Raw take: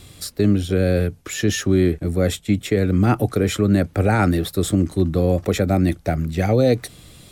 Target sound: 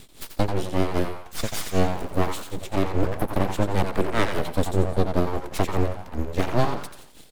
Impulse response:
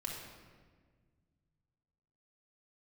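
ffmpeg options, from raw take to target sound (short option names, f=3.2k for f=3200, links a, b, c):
-filter_complex "[0:a]asettb=1/sr,asplit=3[a][b][c];[a]atrim=end=1.344[d];[b]atrim=start=1.34:end=2.61,asetpts=PTS-STARTPTS,afade=t=in:d=0.004:c=qsin,afade=t=out:st=1.266:d=0.004:c=qsin,aeval=exprs='val(0)+0.5*0.0237*sgn(val(0))':c=same[e];[c]atrim=start=2.606[f];[d][e]acrossfade=d=0.004:c1=hsin:c2=qsin[g];[g][f]acrossfade=d=0.004:c1=qsin:c2=hsin,tremolo=f=5:d=0.99,asplit=2[h][i];[i]asplit=5[j][k][l][m][n];[j]adelay=87,afreqshift=90,volume=-7.5dB[o];[k]adelay=174,afreqshift=180,volume=-15.5dB[p];[l]adelay=261,afreqshift=270,volume=-23.4dB[q];[m]adelay=348,afreqshift=360,volume=-31.4dB[r];[n]adelay=435,afreqshift=450,volume=-39.3dB[s];[o][p][q][r][s]amix=inputs=5:normalize=0[t];[h][t]amix=inputs=2:normalize=0,aeval=exprs='abs(val(0))':c=same"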